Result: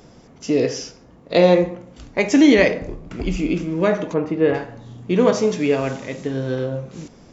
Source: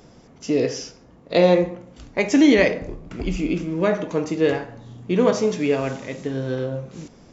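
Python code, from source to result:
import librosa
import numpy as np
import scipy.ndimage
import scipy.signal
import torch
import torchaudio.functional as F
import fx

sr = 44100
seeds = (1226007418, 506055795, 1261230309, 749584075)

y = fx.lowpass(x, sr, hz=2100.0, slope=12, at=(4.13, 4.53), fade=0.02)
y = y * 10.0 ** (2.0 / 20.0)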